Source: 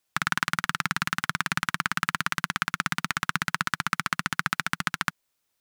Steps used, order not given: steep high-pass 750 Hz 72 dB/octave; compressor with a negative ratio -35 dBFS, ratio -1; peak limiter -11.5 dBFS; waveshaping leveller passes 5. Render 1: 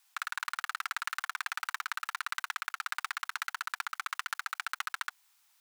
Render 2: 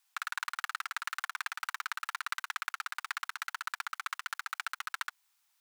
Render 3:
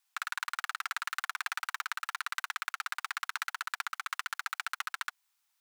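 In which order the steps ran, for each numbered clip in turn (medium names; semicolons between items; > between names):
waveshaping leveller > steep high-pass > compressor with a negative ratio > peak limiter; waveshaping leveller > peak limiter > compressor with a negative ratio > steep high-pass; waveshaping leveller > steep high-pass > peak limiter > compressor with a negative ratio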